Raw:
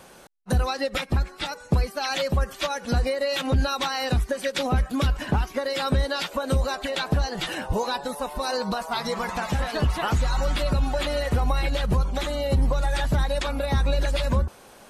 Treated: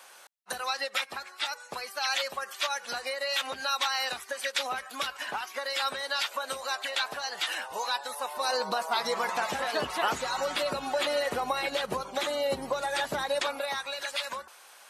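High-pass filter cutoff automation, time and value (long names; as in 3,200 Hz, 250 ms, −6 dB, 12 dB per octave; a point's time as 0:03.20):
0:08.07 950 Hz
0:08.72 420 Hz
0:13.40 420 Hz
0:13.82 1,100 Hz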